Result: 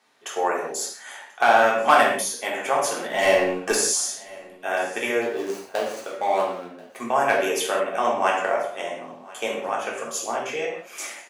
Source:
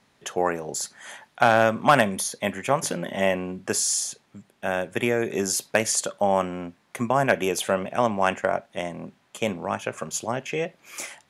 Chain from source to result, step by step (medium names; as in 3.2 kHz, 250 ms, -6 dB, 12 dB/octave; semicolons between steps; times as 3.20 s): 5.21–6.96 s: median filter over 25 samples; high-pass 420 Hz 12 dB/octave; 3.10–3.75 s: waveshaping leveller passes 2; feedback delay 1035 ms, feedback 34%, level -22.5 dB; reverberation, pre-delay 3 ms, DRR -3.5 dB; trim -2.5 dB